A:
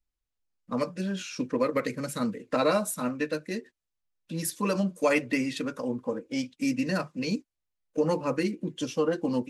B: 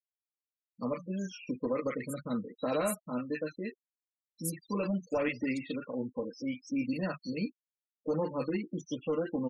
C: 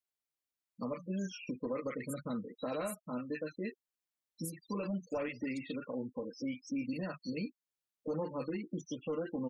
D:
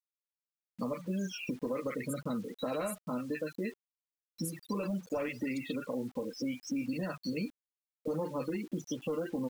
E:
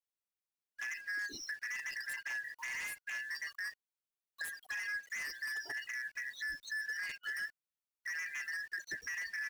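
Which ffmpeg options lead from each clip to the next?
ffmpeg -i in.wav -filter_complex "[0:a]volume=20.5dB,asoftclip=hard,volume=-20.5dB,acrossover=split=1300|4300[link_01][link_02][link_03];[link_01]adelay=100[link_04];[link_02]adelay=140[link_05];[link_04][link_05][link_03]amix=inputs=3:normalize=0,afftfilt=real='re*gte(hypot(re,im),0.0158)':imag='im*gte(hypot(re,im),0.0158)':win_size=1024:overlap=0.75,volume=-4.5dB" out.wav
ffmpeg -i in.wav -af "alimiter=level_in=7dB:limit=-24dB:level=0:latency=1:release=331,volume=-7dB,volume=1.5dB" out.wav
ffmpeg -i in.wav -af "acompressor=threshold=-45dB:ratio=2,acrusher=bits=10:mix=0:aa=0.000001,volume=8.5dB" out.wav
ffmpeg -i in.wav -filter_complex "[0:a]afftfilt=real='real(if(lt(b,272),68*(eq(floor(b/68),0)*2+eq(floor(b/68),1)*0+eq(floor(b/68),2)*3+eq(floor(b/68),3)*1)+mod(b,68),b),0)':imag='imag(if(lt(b,272),68*(eq(floor(b/68),0)*2+eq(floor(b/68),1)*0+eq(floor(b/68),2)*3+eq(floor(b/68),3)*1)+mod(b,68),b),0)':win_size=2048:overlap=0.75,acrossover=split=1500[link_01][link_02];[link_02]aeval=exprs='0.0178*(abs(mod(val(0)/0.0178+3,4)-2)-1)':channel_layout=same[link_03];[link_01][link_03]amix=inputs=2:normalize=0,volume=-3.5dB" out.wav

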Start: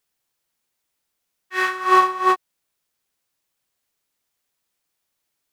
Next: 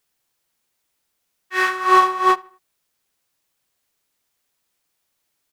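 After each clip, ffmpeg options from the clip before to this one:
ffmpeg -i in.wav -filter_complex "[0:a]asplit=2[link_01][link_02];[link_02]asoftclip=type=tanh:threshold=-19dB,volume=-6dB[link_03];[link_01][link_03]amix=inputs=2:normalize=0,asplit=2[link_04][link_05];[link_05]adelay=77,lowpass=frequency=3500:poles=1,volume=-23dB,asplit=2[link_06][link_07];[link_07]adelay=77,lowpass=frequency=3500:poles=1,volume=0.4,asplit=2[link_08][link_09];[link_09]adelay=77,lowpass=frequency=3500:poles=1,volume=0.4[link_10];[link_04][link_06][link_08][link_10]amix=inputs=4:normalize=0" out.wav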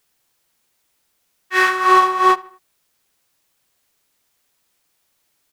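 ffmpeg -i in.wav -af "acompressor=threshold=-18dB:ratio=2,volume=6dB" out.wav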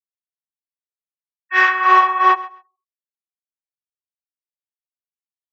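ffmpeg -i in.wav -af "afftfilt=real='re*gte(hypot(re,im),0.0282)':imag='im*gte(hypot(re,im),0.0282)':win_size=1024:overlap=0.75,highpass=frequency=430:width=0.5412,highpass=frequency=430:width=1.3066,equalizer=frequency=630:width_type=q:width=4:gain=4,equalizer=frequency=990:width_type=q:width=4:gain=3,equalizer=frequency=1800:width_type=q:width=4:gain=4,equalizer=frequency=2600:width_type=q:width=4:gain=3,equalizer=frequency=4300:width_type=q:width=4:gain=-8,lowpass=frequency=5800:width=0.5412,lowpass=frequency=5800:width=1.3066,aecho=1:1:134|268:0.112|0.018,volume=-1dB" out.wav

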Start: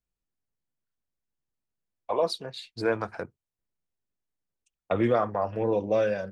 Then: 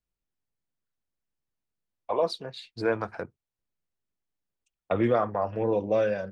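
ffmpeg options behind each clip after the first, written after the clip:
ffmpeg -i in.wav -af "highshelf=frequency=7000:gain=-9.5" out.wav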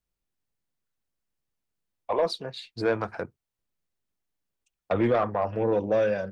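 ffmpeg -i in.wav -af "asoftclip=type=tanh:threshold=-17.5dB,volume=2.5dB" out.wav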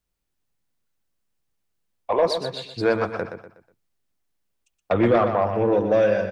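ffmpeg -i in.wav -af "aecho=1:1:122|244|366|488:0.398|0.143|0.0516|0.0186,volume=4.5dB" out.wav

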